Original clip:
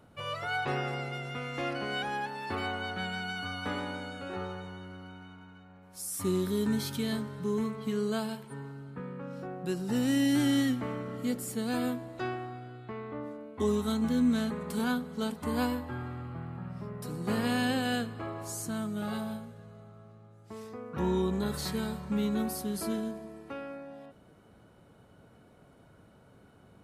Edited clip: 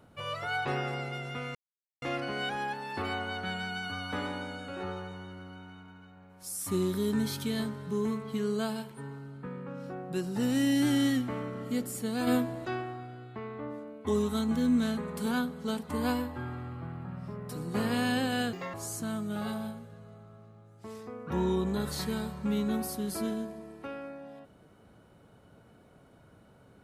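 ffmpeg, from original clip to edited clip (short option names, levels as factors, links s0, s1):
-filter_complex "[0:a]asplit=6[s0][s1][s2][s3][s4][s5];[s0]atrim=end=1.55,asetpts=PTS-STARTPTS,afade=t=out:st=1.546:d=0.004:c=hsin,apad=pad_dur=0.47[s6];[s1]atrim=start=1.55:end=11.802,asetpts=PTS-STARTPTS,afade=t=in:d=0.004:c=hsin[s7];[s2]atrim=start=11.798:end=12.182,asetpts=PTS-STARTPTS,volume=1.88[s8];[s3]atrim=start=12.178:end=18.064[s9];[s4]atrim=start=18.06:end=18.4,asetpts=PTS-STARTPTS,asetrate=72324,aresample=44100[s10];[s5]atrim=start=18.396[s11];[s6][s7]concat=n=2:v=0:a=1[s12];[s12][s8]acrossfade=d=0.004:c1=hsin:c2=hsin[s13];[s13][s9]acrossfade=d=0.004:c1=hsin:c2=hsin[s14];[s14][s10]acrossfade=d=0.004:c1=hsin:c2=hsin[s15];[s15][s11]acrossfade=d=0.004:c1=hsin:c2=hsin"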